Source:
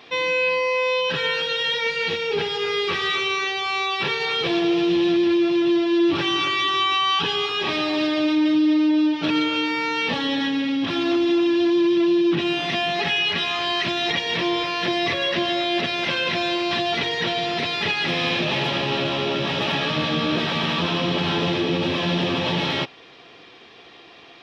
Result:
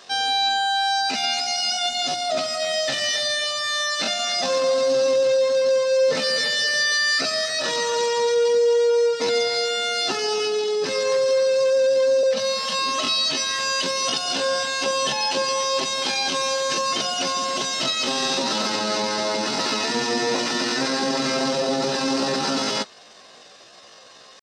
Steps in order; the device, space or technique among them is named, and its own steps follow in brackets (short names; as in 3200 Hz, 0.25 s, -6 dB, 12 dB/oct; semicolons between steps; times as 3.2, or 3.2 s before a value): chipmunk voice (pitch shift +7.5 st); 12.23–12.79 elliptic band-stop 230–480 Hz